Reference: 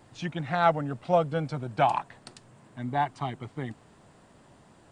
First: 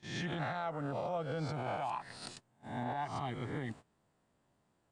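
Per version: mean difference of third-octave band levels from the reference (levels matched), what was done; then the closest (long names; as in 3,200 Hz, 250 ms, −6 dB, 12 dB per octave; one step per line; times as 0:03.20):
8.0 dB: peak hold with a rise ahead of every peak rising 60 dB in 0.76 s
noise gate −45 dBFS, range −19 dB
downward compressor 6 to 1, threshold −27 dBFS, peak gain reduction 11.5 dB
brickwall limiter −25.5 dBFS, peak gain reduction 8.5 dB
level −3 dB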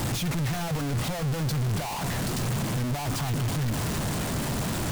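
18.0 dB: sign of each sample alone
bass and treble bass +9 dB, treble +3 dB
level −2.5 dB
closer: first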